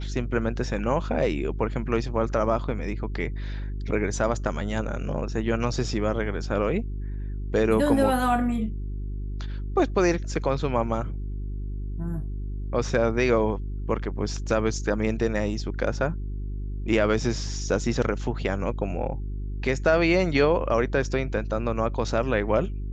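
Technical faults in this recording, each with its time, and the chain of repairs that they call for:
hum 50 Hz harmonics 8 -31 dBFS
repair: de-hum 50 Hz, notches 8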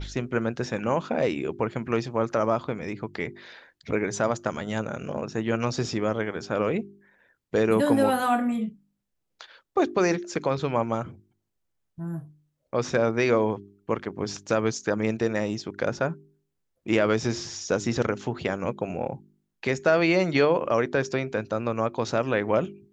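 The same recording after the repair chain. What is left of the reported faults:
none

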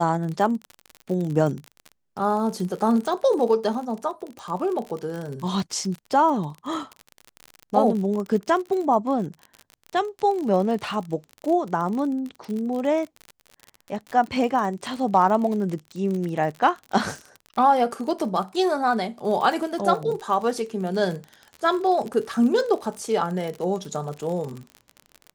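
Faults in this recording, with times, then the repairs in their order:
crackle 44/s -29 dBFS
4.39 pop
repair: de-click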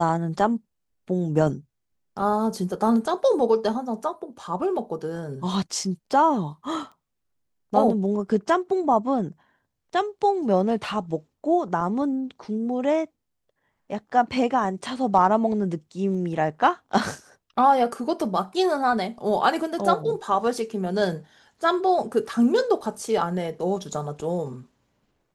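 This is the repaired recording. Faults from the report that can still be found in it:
none

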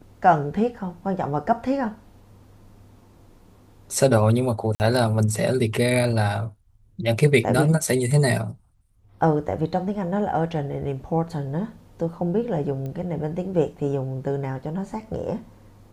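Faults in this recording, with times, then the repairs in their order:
4.75–4.8 gap 49 ms
12.86 pop -22 dBFS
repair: de-click; interpolate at 4.75, 49 ms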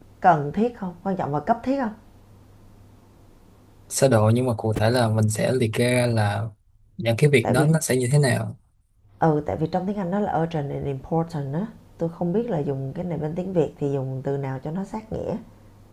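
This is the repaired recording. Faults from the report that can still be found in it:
none

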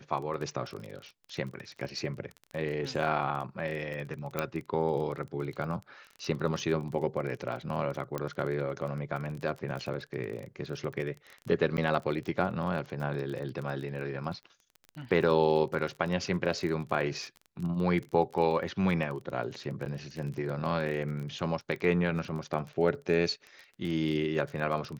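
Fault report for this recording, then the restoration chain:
crackle 24/s -36 dBFS
4.39 pop -15 dBFS
8.18 pop -19 dBFS
11.77–11.78 gap 9.2 ms
19.85–19.86 gap 9.6 ms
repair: de-click; interpolate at 11.77, 9.2 ms; interpolate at 19.85, 9.6 ms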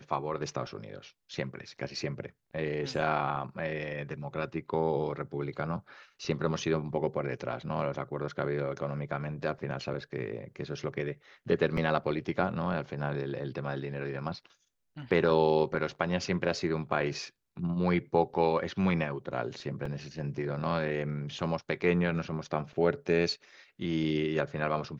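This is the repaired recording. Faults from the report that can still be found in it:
8.18 pop

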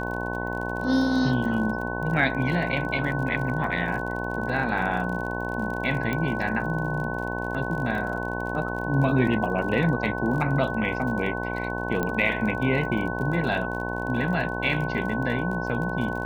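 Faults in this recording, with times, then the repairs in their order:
buzz 60 Hz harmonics 18 -31 dBFS
crackle 35/s -33 dBFS
tone 1500 Hz -32 dBFS
6.13 pop -15 dBFS
12.03 pop -14 dBFS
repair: de-click; notch 1500 Hz, Q 30; de-hum 60 Hz, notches 18

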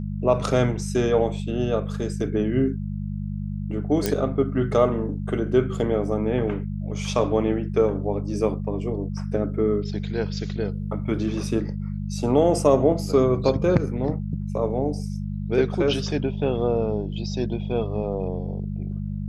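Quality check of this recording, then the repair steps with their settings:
hum 50 Hz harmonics 4 -29 dBFS
4.06 pop -7 dBFS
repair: de-click; de-hum 50 Hz, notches 4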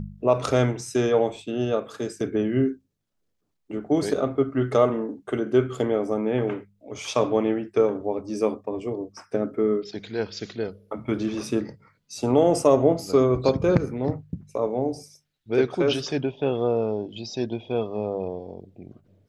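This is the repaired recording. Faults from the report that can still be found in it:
none

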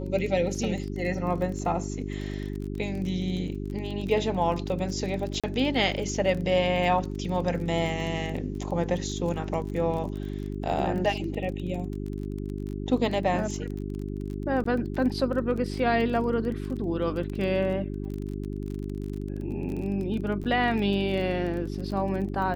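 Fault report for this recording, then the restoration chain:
crackle 26/s -33 dBFS
hum 50 Hz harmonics 8 -33 dBFS
5.4–5.44 gap 36 ms
14.64–14.65 gap 14 ms
20.44–20.45 gap 7.6 ms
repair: de-click; de-hum 50 Hz, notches 8; interpolate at 5.4, 36 ms; interpolate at 14.64, 14 ms; interpolate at 20.44, 7.6 ms

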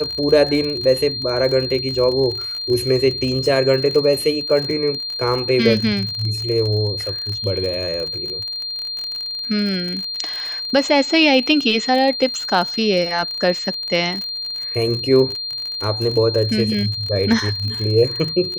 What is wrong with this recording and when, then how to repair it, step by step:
crackle 47/s -24 dBFS
tone 4200 Hz -24 dBFS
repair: de-click; notch 4200 Hz, Q 30

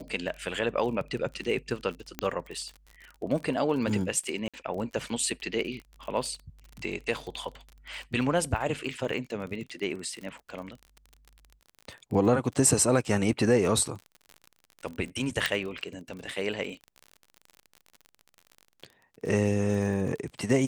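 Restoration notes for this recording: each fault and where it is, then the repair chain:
crackle 41/s -36 dBFS
2.19 pop -14 dBFS
4.48–4.54 gap 56 ms
15.46 pop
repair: de-click; interpolate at 4.48, 56 ms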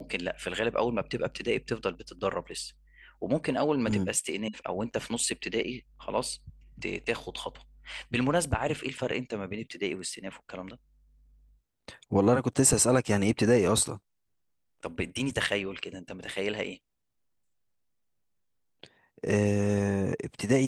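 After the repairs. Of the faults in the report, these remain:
2.19 pop

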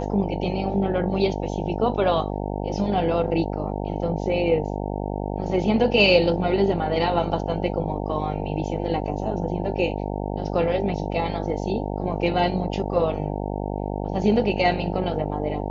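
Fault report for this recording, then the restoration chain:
buzz 50 Hz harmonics 18 -28 dBFS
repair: de-hum 50 Hz, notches 18

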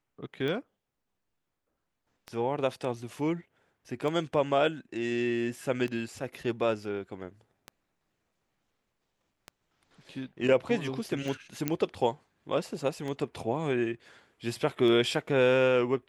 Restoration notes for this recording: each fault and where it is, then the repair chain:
tick 33 1/3 rpm -23 dBFS
11.68 pop -13 dBFS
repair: de-click

